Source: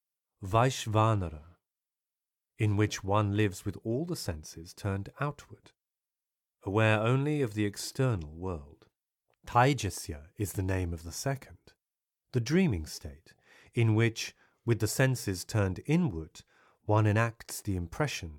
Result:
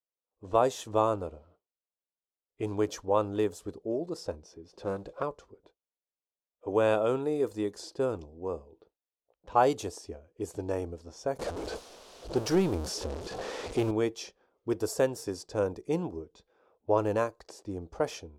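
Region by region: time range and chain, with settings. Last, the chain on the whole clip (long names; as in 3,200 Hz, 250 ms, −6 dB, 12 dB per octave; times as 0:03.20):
0:04.73–0:05.23: mu-law and A-law mismatch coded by mu + comb filter 5.5 ms, depth 36% + highs frequency-modulated by the lows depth 0.23 ms
0:11.39–0:13.91: converter with a step at zero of −32.5 dBFS + high-shelf EQ 12,000 Hz −6 dB + leveller curve on the samples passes 1
whole clip: octave-band graphic EQ 125/500/2,000 Hz −12/+9/−11 dB; low-pass that shuts in the quiet parts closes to 2,900 Hz, open at −24 dBFS; dynamic equaliser 1,200 Hz, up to +4 dB, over −42 dBFS, Q 1.1; level −2.5 dB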